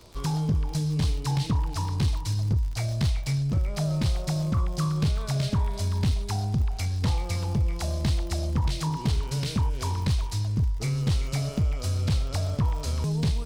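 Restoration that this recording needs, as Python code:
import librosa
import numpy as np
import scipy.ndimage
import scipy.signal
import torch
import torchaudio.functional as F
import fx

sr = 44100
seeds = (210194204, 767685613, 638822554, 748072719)

y = fx.fix_declip(x, sr, threshold_db=-18.5)
y = fx.fix_declick_ar(y, sr, threshold=6.5)
y = fx.fix_echo_inverse(y, sr, delay_ms=307, level_db=-22.5)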